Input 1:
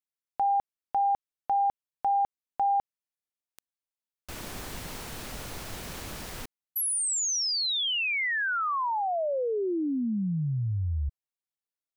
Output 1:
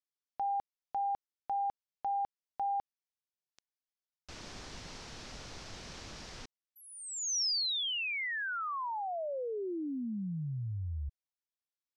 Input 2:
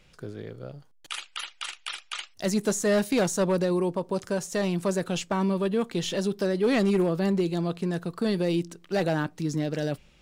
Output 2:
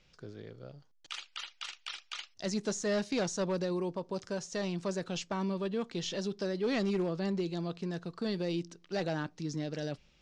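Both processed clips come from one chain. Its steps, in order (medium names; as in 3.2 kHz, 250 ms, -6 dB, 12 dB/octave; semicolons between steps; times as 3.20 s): four-pole ladder low-pass 6.7 kHz, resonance 40%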